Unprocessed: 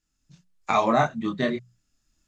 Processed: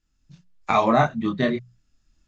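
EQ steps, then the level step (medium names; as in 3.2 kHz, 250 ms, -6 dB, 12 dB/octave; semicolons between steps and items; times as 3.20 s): low-pass 5.6 kHz 12 dB/octave; bass shelf 120 Hz +7 dB; +2.0 dB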